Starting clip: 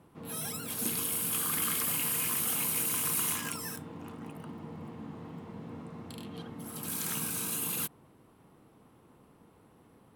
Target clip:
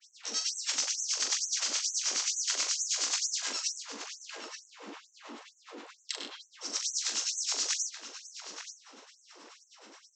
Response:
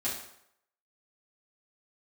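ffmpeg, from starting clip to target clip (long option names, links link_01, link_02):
-filter_complex "[0:a]equalizer=frequency=120:width=3:gain=-12.5,acompressor=threshold=-48dB:ratio=6,asplit=4[link_01][link_02][link_03][link_04];[link_02]asetrate=22050,aresample=44100,atempo=2,volume=-2dB[link_05];[link_03]asetrate=37084,aresample=44100,atempo=1.18921,volume=-17dB[link_06];[link_04]asetrate=55563,aresample=44100,atempo=0.793701,volume=-9dB[link_07];[link_01][link_05][link_06][link_07]amix=inputs=4:normalize=0,acrossover=split=220[link_08][link_09];[link_09]asoftclip=type=tanh:threshold=-31dB[link_10];[link_08][link_10]amix=inputs=2:normalize=0,crystalizer=i=8.5:c=0,aresample=16000,aeval=exprs='(mod(21.1*val(0)+1,2)-1)/21.1':channel_layout=same,aresample=44100,acrossover=split=780[link_11][link_12];[link_11]aeval=exprs='val(0)*(1-1/2+1/2*cos(2*PI*9.4*n/s))':channel_layout=same[link_13];[link_12]aeval=exprs='val(0)*(1-1/2-1/2*cos(2*PI*9.4*n/s))':channel_layout=same[link_14];[link_13][link_14]amix=inputs=2:normalize=0,asplit=2[link_15][link_16];[link_16]adelay=42,volume=-6.5dB[link_17];[link_15][link_17]amix=inputs=2:normalize=0,asplit=2[link_18][link_19];[link_19]adelay=877,lowpass=frequency=1800:poles=1,volume=-4dB,asplit=2[link_20][link_21];[link_21]adelay=877,lowpass=frequency=1800:poles=1,volume=0.32,asplit=2[link_22][link_23];[link_23]adelay=877,lowpass=frequency=1800:poles=1,volume=0.32,asplit=2[link_24][link_25];[link_25]adelay=877,lowpass=frequency=1800:poles=1,volume=0.32[link_26];[link_18][link_20][link_22][link_24][link_26]amix=inputs=5:normalize=0,afftfilt=real='re*gte(b*sr/1024,210*pow(6000/210,0.5+0.5*sin(2*PI*2.2*pts/sr)))':imag='im*gte(b*sr/1024,210*pow(6000/210,0.5+0.5*sin(2*PI*2.2*pts/sr)))':win_size=1024:overlap=0.75,volume=7.5dB"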